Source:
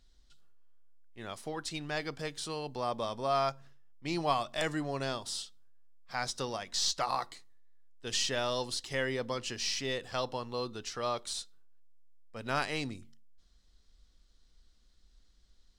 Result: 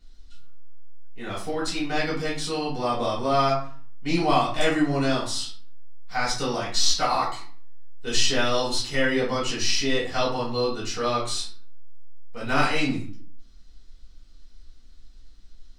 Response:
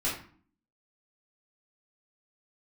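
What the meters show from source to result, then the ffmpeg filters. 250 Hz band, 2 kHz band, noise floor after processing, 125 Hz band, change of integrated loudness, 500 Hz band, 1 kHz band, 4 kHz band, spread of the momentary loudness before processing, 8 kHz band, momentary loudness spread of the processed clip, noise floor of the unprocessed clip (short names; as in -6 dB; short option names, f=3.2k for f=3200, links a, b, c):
+13.0 dB, +10.0 dB, -46 dBFS, +10.0 dB, +9.5 dB, +9.0 dB, +9.0 dB, +9.0 dB, 12 LU, +8.0 dB, 11 LU, -65 dBFS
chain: -filter_complex "[1:a]atrim=start_sample=2205[a];[0:a][a]afir=irnorm=-1:irlink=0,volume=2.5dB"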